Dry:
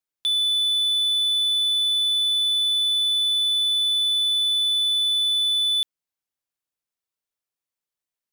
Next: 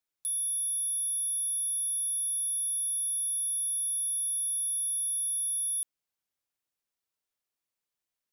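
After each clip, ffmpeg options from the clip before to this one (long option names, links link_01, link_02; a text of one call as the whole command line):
ffmpeg -i in.wav -af "aeval=exprs='0.0473*(abs(mod(val(0)/0.0473+3,4)-2)-1)':channel_layout=same" out.wav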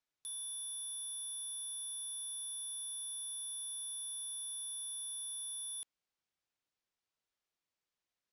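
ffmpeg -i in.wav -af "lowpass=6000" out.wav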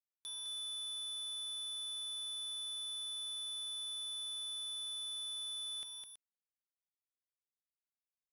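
ffmpeg -i in.wav -filter_complex "[0:a]acrusher=bits=10:mix=0:aa=0.000001,aecho=1:1:208|326:0.531|0.188,acrossover=split=6200[link_01][link_02];[link_02]acompressor=threshold=-60dB:ratio=4:attack=1:release=60[link_03];[link_01][link_03]amix=inputs=2:normalize=0,volume=6dB" out.wav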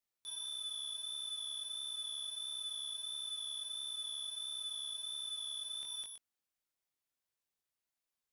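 ffmpeg -i in.wav -af "alimiter=level_in=18dB:limit=-24dB:level=0:latency=1:release=69,volume=-18dB,flanger=delay=19.5:depth=4.5:speed=1.5,volume=8dB" out.wav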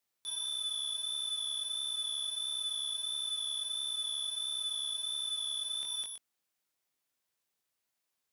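ffmpeg -i in.wav -af "highpass=frequency=100:poles=1,volume=6dB" out.wav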